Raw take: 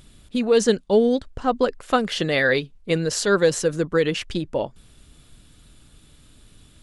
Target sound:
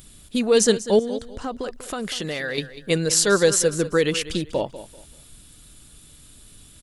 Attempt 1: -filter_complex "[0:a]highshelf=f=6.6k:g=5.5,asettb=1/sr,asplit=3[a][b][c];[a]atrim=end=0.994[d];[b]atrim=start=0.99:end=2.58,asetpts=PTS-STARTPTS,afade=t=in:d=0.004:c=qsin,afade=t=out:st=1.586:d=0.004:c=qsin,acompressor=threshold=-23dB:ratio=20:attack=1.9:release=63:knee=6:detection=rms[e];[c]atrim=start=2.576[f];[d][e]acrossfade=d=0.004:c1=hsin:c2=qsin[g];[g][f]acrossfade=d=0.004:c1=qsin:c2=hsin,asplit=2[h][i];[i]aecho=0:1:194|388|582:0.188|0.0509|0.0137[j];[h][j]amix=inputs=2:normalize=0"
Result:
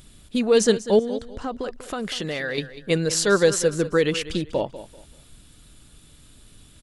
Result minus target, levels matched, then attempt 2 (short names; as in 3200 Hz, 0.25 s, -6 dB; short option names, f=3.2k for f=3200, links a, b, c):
8000 Hz band -4.0 dB
-filter_complex "[0:a]highshelf=f=6.6k:g=15,asettb=1/sr,asplit=3[a][b][c];[a]atrim=end=0.994[d];[b]atrim=start=0.99:end=2.58,asetpts=PTS-STARTPTS,afade=t=in:d=0.004:c=qsin,afade=t=out:st=1.586:d=0.004:c=qsin,acompressor=threshold=-23dB:ratio=20:attack=1.9:release=63:knee=6:detection=rms[e];[c]atrim=start=2.576[f];[d][e]acrossfade=d=0.004:c1=hsin:c2=qsin[g];[g][f]acrossfade=d=0.004:c1=qsin:c2=hsin,asplit=2[h][i];[i]aecho=0:1:194|388|582:0.188|0.0509|0.0137[j];[h][j]amix=inputs=2:normalize=0"